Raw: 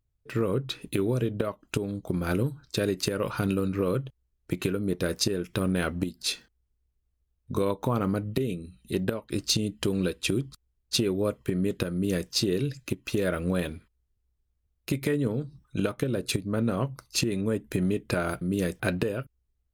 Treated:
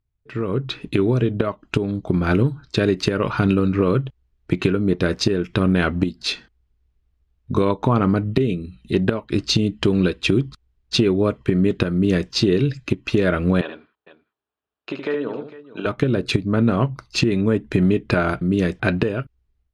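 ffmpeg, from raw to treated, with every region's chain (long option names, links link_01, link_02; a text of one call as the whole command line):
ffmpeg -i in.wav -filter_complex "[0:a]asettb=1/sr,asplit=3[link_01][link_02][link_03];[link_01]atrim=end=13.614[link_04];[link_02]atrim=start=13.61:end=15.86,asetpts=PTS-STARTPTS,afade=type=in:duration=0.004:curve=qsin,afade=type=out:start_time=2.246:duration=0.004:curve=qsin,highpass=510,lowpass=2800,equalizer=frequency=2100:width=4:gain=-10.5,aecho=1:1:73|454:0.473|0.141,atrim=end_sample=99225[link_05];[link_03]atrim=start=15.856[link_06];[link_04][link_05]acrossfade=duration=0.004:curve1=hsin:curve2=qsin[link_07];[link_07][link_06]acrossfade=duration=0.004:curve1=qsin:curve2=hsin,lowpass=3800,equalizer=frequency=520:width=6.4:gain=-6.5,dynaudnorm=framelen=370:gausssize=3:maxgain=10dB" out.wav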